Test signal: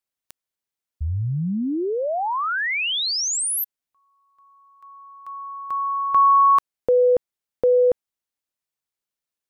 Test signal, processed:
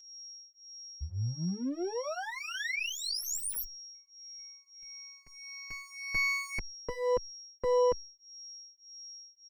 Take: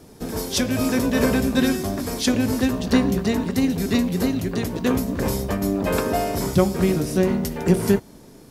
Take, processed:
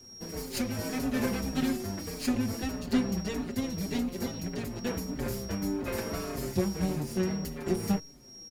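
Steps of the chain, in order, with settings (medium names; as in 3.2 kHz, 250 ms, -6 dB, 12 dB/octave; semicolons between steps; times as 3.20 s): comb filter that takes the minimum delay 0.42 ms; whistle 5.6 kHz -37 dBFS; endless flanger 5.2 ms -1.7 Hz; trim -7 dB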